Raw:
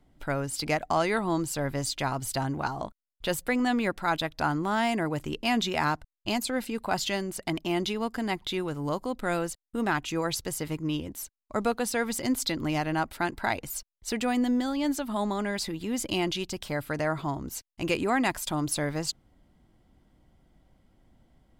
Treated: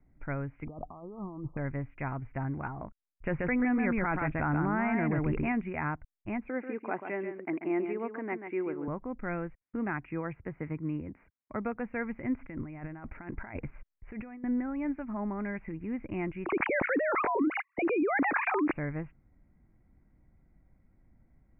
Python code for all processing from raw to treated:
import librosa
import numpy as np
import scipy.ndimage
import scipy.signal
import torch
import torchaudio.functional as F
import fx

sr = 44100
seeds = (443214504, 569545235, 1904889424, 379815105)

y = fx.chain(x, sr, fx.over_compress(threshold_db=-35.0, ratio=-1.0),
    fx.brickwall_lowpass(high_hz=1300.0), at=(0.67, 1.57))
y = fx.chain(y, sr, fx.echo_single(ms=133, db=-5.0),
    fx.env_flatten(amount_pct=70), at=(3.26, 5.52))
y = fx.chain(y, sr, fx.highpass_res(hz=350.0, q=1.9),
    fx.echo_single(ms=138, db=-8.0), at=(6.49, 8.88))
y = fx.chain(y, sr, fx.highpass(hz=83.0, slope=6),
    fx.high_shelf(hz=4600.0, db=-4.5),
    fx.band_squash(depth_pct=40), at=(9.61, 11.76))
y = fx.chain(y, sr, fx.high_shelf(hz=5600.0, db=-10.0),
    fx.over_compress(threshold_db=-36.0, ratio=-1.0), at=(12.39, 14.44))
y = fx.chain(y, sr, fx.sine_speech(),
    fx.lowpass(hz=2600.0, slope=12),
    fx.env_flatten(amount_pct=100), at=(16.45, 18.73))
y = scipy.signal.sosfilt(scipy.signal.butter(16, 2400.0, 'lowpass', fs=sr, output='sos'), y)
y = fx.peak_eq(y, sr, hz=750.0, db=-9.0, octaves=2.9)